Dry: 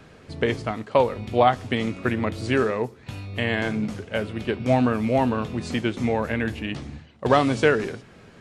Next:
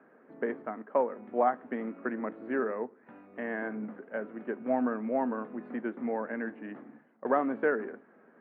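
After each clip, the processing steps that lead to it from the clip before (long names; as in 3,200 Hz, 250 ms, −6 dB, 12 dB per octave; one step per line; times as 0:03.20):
elliptic band-pass filter 230–1,700 Hz, stop band 50 dB
level −8 dB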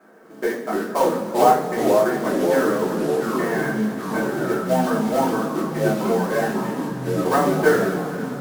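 floating-point word with a short mantissa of 2 bits
coupled-rooms reverb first 0.33 s, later 4.4 s, from −19 dB, DRR −7.5 dB
delay with pitch and tempo change per echo 214 ms, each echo −3 semitones, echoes 3
level +2.5 dB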